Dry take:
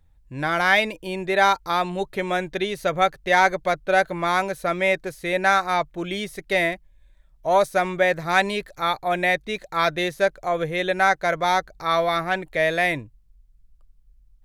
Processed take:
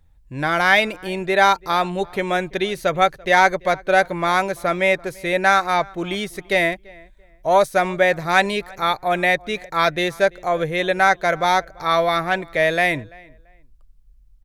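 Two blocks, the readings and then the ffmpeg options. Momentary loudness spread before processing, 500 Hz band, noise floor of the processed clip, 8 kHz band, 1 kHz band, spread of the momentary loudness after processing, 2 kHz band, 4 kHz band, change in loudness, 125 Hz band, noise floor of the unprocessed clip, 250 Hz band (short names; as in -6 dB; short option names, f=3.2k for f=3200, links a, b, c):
8 LU, +3.0 dB, -52 dBFS, +3.0 dB, +3.0 dB, 8 LU, +3.0 dB, +3.0 dB, +3.0 dB, +3.0 dB, -57 dBFS, +3.0 dB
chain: -filter_complex "[0:a]asplit=2[a][b];[b]adelay=338,lowpass=f=2.6k:p=1,volume=-24dB,asplit=2[c][d];[d]adelay=338,lowpass=f=2.6k:p=1,volume=0.25[e];[a][c][e]amix=inputs=3:normalize=0,volume=3dB"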